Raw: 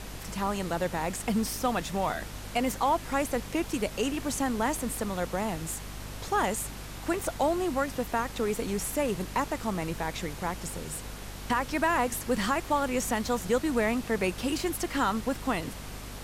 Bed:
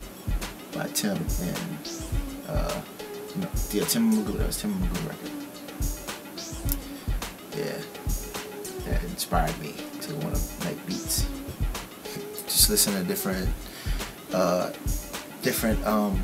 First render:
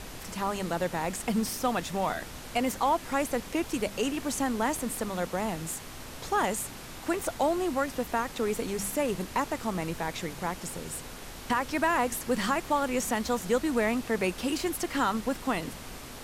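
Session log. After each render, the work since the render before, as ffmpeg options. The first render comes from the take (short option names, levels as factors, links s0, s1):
-af "bandreject=f=50:t=h:w=4,bandreject=f=100:t=h:w=4,bandreject=f=150:t=h:w=4,bandreject=f=200:t=h:w=4"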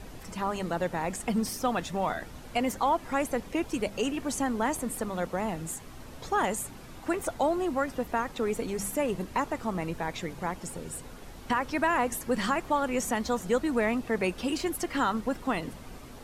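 -af "afftdn=nr=9:nf=-43"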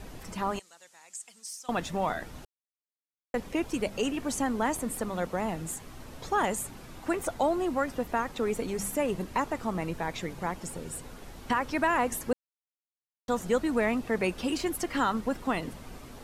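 -filter_complex "[0:a]asettb=1/sr,asplit=3[s0][s1][s2];[s0]atrim=end=0.594[s3];[s1]atrim=start=0.59:end=1.69,asetpts=PTS-STARTPTS,afade=t=in:d=0.004:c=qsin,afade=t=out:st=1.096:d=0.004:c=qsin,bandpass=f=7300:t=q:w=2.1[s4];[s2]atrim=start=1.686[s5];[s3][s4]acrossfade=d=0.004:c1=hsin:c2=qsin[s6];[s6][s5]acrossfade=d=0.004:c1=qsin:c2=hsin,asplit=5[s7][s8][s9][s10][s11];[s7]atrim=end=2.45,asetpts=PTS-STARTPTS,afade=t=out:st=2.446:d=0.004:c=hsin[s12];[s8]atrim=start=2.45:end=3.34,asetpts=PTS-STARTPTS,volume=0[s13];[s9]atrim=start=3.34:end=12.33,asetpts=PTS-STARTPTS,afade=t=in:d=0.004:c=hsin,afade=t=out:st=8.986:d=0.004:c=hsin[s14];[s10]atrim=start=12.33:end=13.28,asetpts=PTS-STARTPTS,volume=0[s15];[s11]atrim=start=13.28,asetpts=PTS-STARTPTS,afade=t=in:d=0.004:c=hsin[s16];[s12][s13][s14][s15][s16]concat=n=5:v=0:a=1"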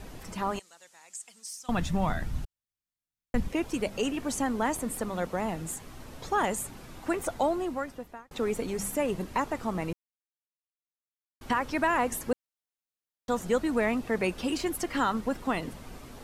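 -filter_complex "[0:a]asplit=3[s0][s1][s2];[s0]afade=t=out:st=1.57:d=0.02[s3];[s1]asubboost=boost=9:cutoff=170,afade=t=in:st=1.57:d=0.02,afade=t=out:st=3.47:d=0.02[s4];[s2]afade=t=in:st=3.47:d=0.02[s5];[s3][s4][s5]amix=inputs=3:normalize=0,asplit=4[s6][s7][s8][s9];[s6]atrim=end=8.31,asetpts=PTS-STARTPTS,afade=t=out:st=7.43:d=0.88[s10];[s7]atrim=start=8.31:end=9.93,asetpts=PTS-STARTPTS,afade=t=in:d=0.004:c=hsin,afade=t=out:st=1.616:d=0.004:c=hsin[s11];[s8]atrim=start=9.93:end=11.41,asetpts=PTS-STARTPTS,volume=0[s12];[s9]atrim=start=11.41,asetpts=PTS-STARTPTS,afade=t=in:d=0.004:c=hsin[s13];[s10][s11][s12][s13]concat=n=4:v=0:a=1"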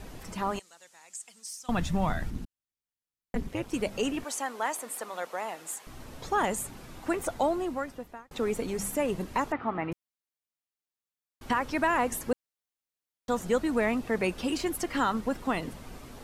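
-filter_complex "[0:a]asettb=1/sr,asplit=3[s0][s1][s2];[s0]atrim=end=2.304[s3];[s1]atrim=start=2.3:end=3.73,asetpts=PTS-STARTPTS,afade=t=in:d=0.004:c=qsin,afade=t=out:st=1.426:d=0.004:c=qsin,tremolo=f=210:d=0.919[s4];[s2]atrim=start=3.726[s5];[s3][s4]acrossfade=d=0.004:c1=hsin:c2=qsin[s6];[s6][s5]acrossfade=d=0.004:c1=qsin:c2=hsin,asettb=1/sr,asplit=3[s7][s8][s9];[s7]atrim=end=4.244[s10];[s8]atrim=start=4.24:end=5.87,asetpts=PTS-STARTPTS,afade=t=in:d=0.004:c=qsin,afade=t=out:st=1.626:d=0.004:c=qsin,highpass=600[s11];[s9]atrim=start=5.866[s12];[s10][s11]acrossfade=d=0.004:c1=hsin:c2=qsin[s13];[s13][s12]acrossfade=d=0.004:c1=qsin:c2=hsin,asettb=1/sr,asplit=3[s14][s15][s16];[s14]atrim=end=9.524[s17];[s15]atrim=start=9.52:end=9.92,asetpts=PTS-STARTPTS,afade=t=in:d=0.004:c=qsin,afade=t=out:st=0.396:d=0.004:c=qsin,highpass=100,equalizer=f=190:t=q:w=4:g=-7,equalizer=f=280:t=q:w=4:g=4,equalizer=f=500:t=q:w=4:g=-4,equalizer=f=790:t=q:w=4:g=5,equalizer=f=1300:t=q:w=4:g=6,equalizer=f=1900:t=q:w=4:g=4,lowpass=f=2900:w=0.5412,lowpass=f=2900:w=1.3066[s18];[s16]atrim=start=9.916[s19];[s17][s18]acrossfade=d=0.004:c1=hsin:c2=qsin[s20];[s20][s19]acrossfade=d=0.004:c1=qsin:c2=hsin"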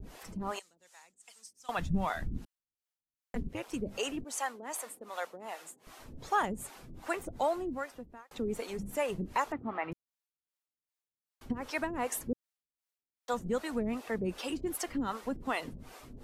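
-filter_complex "[0:a]acrossover=split=420[s0][s1];[s0]aeval=exprs='val(0)*(1-1/2+1/2*cos(2*PI*2.6*n/s))':c=same[s2];[s1]aeval=exprs='val(0)*(1-1/2-1/2*cos(2*PI*2.6*n/s))':c=same[s3];[s2][s3]amix=inputs=2:normalize=0"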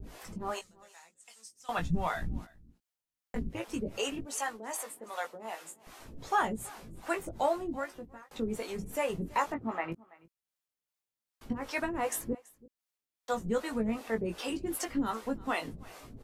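-filter_complex "[0:a]asplit=2[s0][s1];[s1]adelay=18,volume=0.562[s2];[s0][s2]amix=inputs=2:normalize=0,aecho=1:1:331:0.0708"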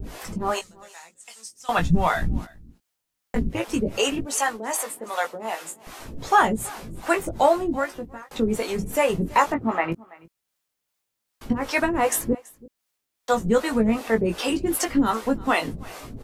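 -af "volume=3.55"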